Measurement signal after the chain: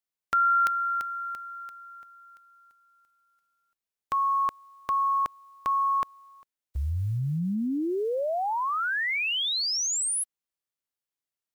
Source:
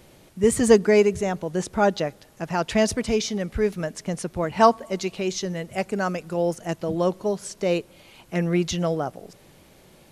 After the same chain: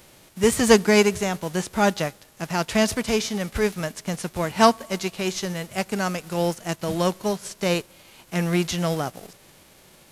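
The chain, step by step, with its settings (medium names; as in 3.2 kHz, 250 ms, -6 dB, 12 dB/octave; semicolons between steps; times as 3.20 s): formants flattened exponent 0.6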